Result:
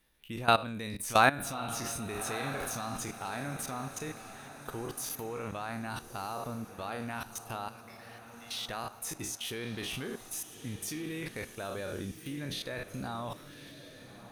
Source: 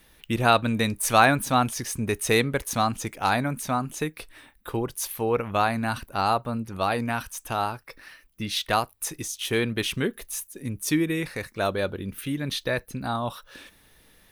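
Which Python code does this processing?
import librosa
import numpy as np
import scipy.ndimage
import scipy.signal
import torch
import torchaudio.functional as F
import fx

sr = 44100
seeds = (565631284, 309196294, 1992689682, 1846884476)

y = fx.spec_trails(x, sr, decay_s=0.38)
y = fx.highpass(y, sr, hz=1400.0, slope=12, at=(7.68, 8.62))
y = fx.level_steps(y, sr, step_db=17)
y = fx.echo_diffused(y, sr, ms=1250, feedback_pct=45, wet_db=-12.5)
y = y * librosa.db_to_amplitude(-4.0)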